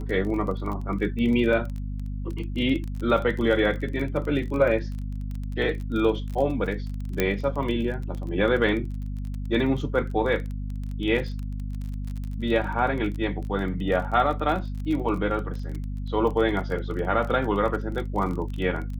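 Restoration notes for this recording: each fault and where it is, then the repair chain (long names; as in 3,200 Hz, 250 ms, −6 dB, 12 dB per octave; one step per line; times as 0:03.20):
surface crackle 23 per second −31 dBFS
mains hum 50 Hz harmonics 5 −31 dBFS
0:07.20: click −8 dBFS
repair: click removal
hum removal 50 Hz, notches 5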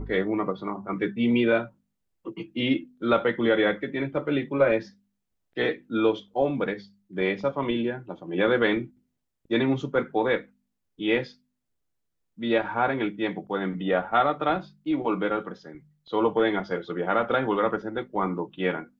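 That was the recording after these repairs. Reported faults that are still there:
none of them is left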